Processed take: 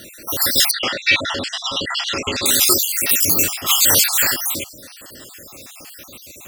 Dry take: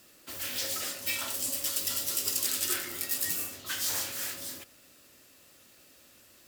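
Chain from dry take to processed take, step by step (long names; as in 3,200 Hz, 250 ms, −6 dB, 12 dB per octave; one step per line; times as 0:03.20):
time-frequency cells dropped at random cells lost 59%
0:00.71–0:02.46: low-pass filter 4,100 Hz 24 dB per octave
boost into a limiter +23.5 dB
level −1 dB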